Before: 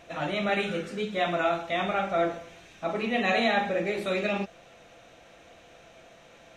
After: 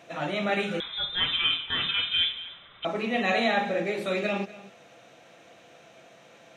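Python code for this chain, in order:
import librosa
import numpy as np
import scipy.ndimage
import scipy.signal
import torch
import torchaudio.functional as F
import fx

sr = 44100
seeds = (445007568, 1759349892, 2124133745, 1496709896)

y = scipy.signal.sosfilt(scipy.signal.butter(4, 110.0, 'highpass', fs=sr, output='sos'), x)
y = y + 10.0 ** (-18.0 / 20.0) * np.pad(y, (int(244 * sr / 1000.0), 0))[:len(y)]
y = fx.freq_invert(y, sr, carrier_hz=3800, at=(0.8, 2.85))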